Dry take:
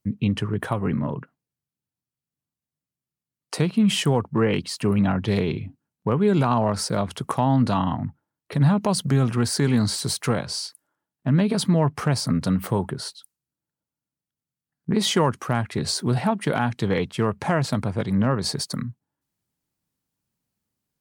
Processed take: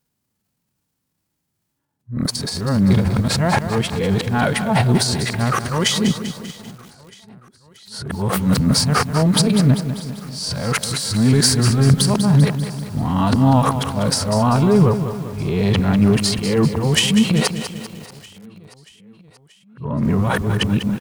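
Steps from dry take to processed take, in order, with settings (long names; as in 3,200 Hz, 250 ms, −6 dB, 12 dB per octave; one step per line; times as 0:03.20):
played backwards from end to start
in parallel at +2.5 dB: brickwall limiter −18.5 dBFS, peak gain reduction 11 dB
on the sum: harmonic and percussive parts rebalanced harmonic +9 dB
transient designer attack −9 dB, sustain +11 dB
on a send: repeating echo 632 ms, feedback 59%, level −22 dB
on the sum: feedback echo at a low word length 196 ms, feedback 55%, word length 5 bits, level −9.5 dB
level −7 dB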